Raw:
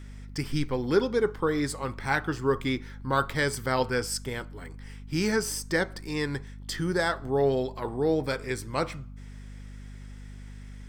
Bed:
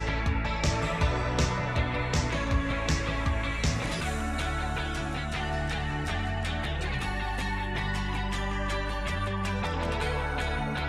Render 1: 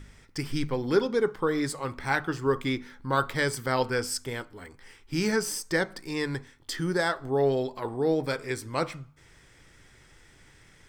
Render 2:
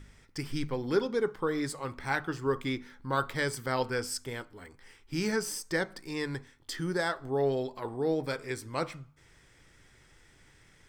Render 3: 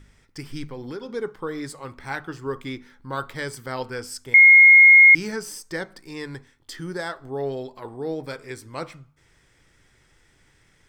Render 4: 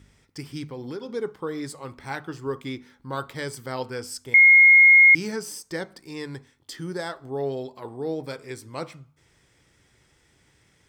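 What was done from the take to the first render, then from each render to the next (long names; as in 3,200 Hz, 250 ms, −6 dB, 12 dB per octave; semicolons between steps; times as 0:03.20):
hum removal 50 Hz, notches 5
level −4 dB
0:00.64–0:01.09: downward compressor, threshold −30 dBFS; 0:04.34–0:05.15: beep over 2,150 Hz −7 dBFS
high-pass filter 57 Hz 12 dB per octave; parametric band 1,600 Hz −4 dB 0.99 octaves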